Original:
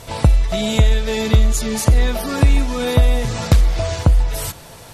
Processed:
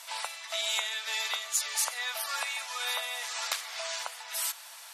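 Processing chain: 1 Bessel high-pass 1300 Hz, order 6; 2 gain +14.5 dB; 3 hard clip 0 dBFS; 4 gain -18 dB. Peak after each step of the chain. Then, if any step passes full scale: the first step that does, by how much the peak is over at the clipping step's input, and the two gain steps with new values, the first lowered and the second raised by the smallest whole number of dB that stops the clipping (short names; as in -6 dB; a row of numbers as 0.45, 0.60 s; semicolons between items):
-11.0, +3.5, 0.0, -18.0 dBFS; step 2, 3.5 dB; step 2 +10.5 dB, step 4 -14 dB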